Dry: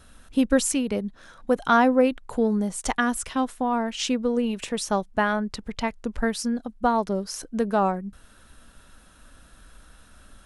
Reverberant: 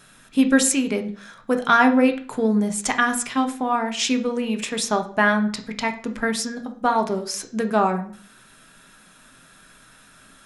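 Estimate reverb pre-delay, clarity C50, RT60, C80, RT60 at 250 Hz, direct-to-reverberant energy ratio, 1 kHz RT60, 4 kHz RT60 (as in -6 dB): 3 ms, 12.5 dB, 0.45 s, 17.5 dB, 0.45 s, 6.0 dB, 0.50 s, 0.40 s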